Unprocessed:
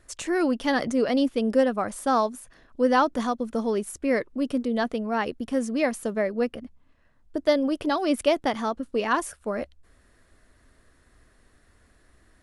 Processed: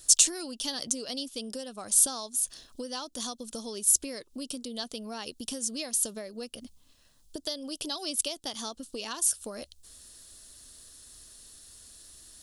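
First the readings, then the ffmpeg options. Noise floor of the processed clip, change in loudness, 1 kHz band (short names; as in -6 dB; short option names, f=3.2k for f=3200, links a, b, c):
-62 dBFS, -3.5 dB, -16.5 dB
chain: -af "acompressor=threshold=-33dB:ratio=12,aexciter=amount=14.2:drive=2.7:freq=3.1k,volume=-3dB"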